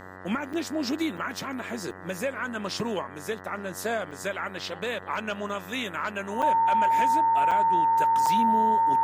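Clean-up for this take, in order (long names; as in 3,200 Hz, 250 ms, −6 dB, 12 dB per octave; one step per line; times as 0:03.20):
hum removal 93.3 Hz, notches 21
notch filter 910 Hz, Q 30
repair the gap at 0:00.53/0:01.17/0:01.91/0:04.11/0:06.42/0:07.51/0:08.26, 5.8 ms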